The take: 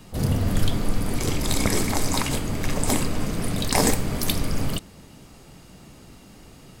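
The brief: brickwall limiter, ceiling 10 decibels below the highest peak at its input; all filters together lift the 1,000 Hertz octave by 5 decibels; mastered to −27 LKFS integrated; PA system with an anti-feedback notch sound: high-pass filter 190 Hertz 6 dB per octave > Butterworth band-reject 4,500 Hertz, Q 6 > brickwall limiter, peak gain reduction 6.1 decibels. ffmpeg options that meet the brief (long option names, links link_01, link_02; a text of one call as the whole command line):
ffmpeg -i in.wav -af "equalizer=frequency=1000:width_type=o:gain=6.5,alimiter=limit=-12.5dB:level=0:latency=1,highpass=frequency=190:poles=1,asuperstop=centerf=4500:order=8:qfactor=6,volume=2dB,alimiter=limit=-15dB:level=0:latency=1" out.wav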